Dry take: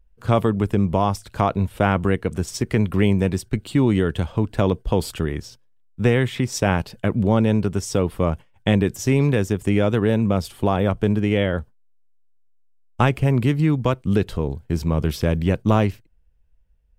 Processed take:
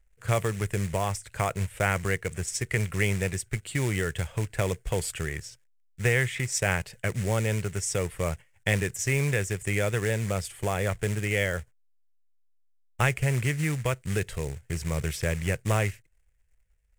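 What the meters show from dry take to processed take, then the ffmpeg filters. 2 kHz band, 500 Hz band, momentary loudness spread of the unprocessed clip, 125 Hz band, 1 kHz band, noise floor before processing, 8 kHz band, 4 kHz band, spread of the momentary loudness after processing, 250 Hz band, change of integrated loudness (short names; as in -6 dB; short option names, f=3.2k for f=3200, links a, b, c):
+1.0 dB, -8.0 dB, 6 LU, -6.5 dB, -8.5 dB, -56 dBFS, +3.5 dB, -4.0 dB, 6 LU, -14.0 dB, -7.0 dB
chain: -af "acrusher=bits=5:mode=log:mix=0:aa=0.000001,equalizer=f=125:t=o:w=1:g=4,equalizer=f=250:t=o:w=1:g=-12,equalizer=f=500:t=o:w=1:g=3,equalizer=f=1k:t=o:w=1:g=-5,equalizer=f=2k:t=o:w=1:g=12,equalizer=f=4k:t=o:w=1:g=-5,equalizer=f=8k:t=o:w=1:g=12,volume=-7.5dB"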